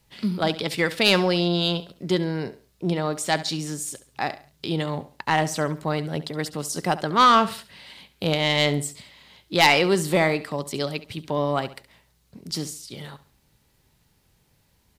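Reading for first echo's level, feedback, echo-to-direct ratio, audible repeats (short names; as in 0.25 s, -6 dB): -15.5 dB, 33%, -15.0 dB, 3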